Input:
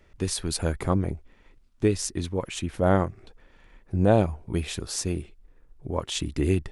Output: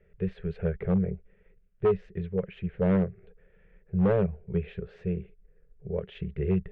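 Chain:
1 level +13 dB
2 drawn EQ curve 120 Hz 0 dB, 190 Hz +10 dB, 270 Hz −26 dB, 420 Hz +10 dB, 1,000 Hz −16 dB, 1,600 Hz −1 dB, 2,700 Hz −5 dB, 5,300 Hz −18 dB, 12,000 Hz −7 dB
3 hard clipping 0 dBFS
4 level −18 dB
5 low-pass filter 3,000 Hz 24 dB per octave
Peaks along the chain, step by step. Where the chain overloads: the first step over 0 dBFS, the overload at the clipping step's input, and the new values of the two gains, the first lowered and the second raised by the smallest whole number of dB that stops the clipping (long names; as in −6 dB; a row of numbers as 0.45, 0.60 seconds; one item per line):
+6.5, +7.5, 0.0, −18.0, −17.5 dBFS
step 1, 7.5 dB
step 1 +5 dB, step 4 −10 dB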